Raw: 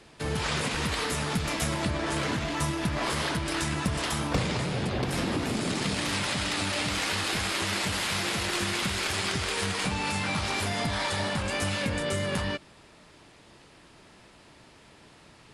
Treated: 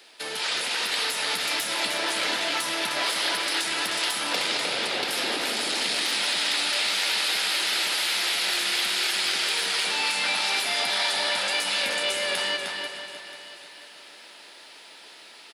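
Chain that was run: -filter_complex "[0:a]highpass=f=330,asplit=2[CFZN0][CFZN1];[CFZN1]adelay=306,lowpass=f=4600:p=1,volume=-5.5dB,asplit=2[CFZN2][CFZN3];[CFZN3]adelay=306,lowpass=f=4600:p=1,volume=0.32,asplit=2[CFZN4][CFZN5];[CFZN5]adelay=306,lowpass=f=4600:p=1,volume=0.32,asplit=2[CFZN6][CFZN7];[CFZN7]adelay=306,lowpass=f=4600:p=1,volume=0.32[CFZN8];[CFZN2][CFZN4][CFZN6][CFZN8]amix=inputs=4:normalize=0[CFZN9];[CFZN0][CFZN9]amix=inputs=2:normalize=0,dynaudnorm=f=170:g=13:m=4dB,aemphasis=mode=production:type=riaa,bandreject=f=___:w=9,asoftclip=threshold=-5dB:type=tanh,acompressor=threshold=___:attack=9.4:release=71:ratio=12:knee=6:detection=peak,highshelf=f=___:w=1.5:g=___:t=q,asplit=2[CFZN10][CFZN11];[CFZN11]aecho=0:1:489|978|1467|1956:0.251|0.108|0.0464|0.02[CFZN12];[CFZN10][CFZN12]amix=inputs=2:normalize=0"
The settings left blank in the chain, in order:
1100, -22dB, 5500, -7.5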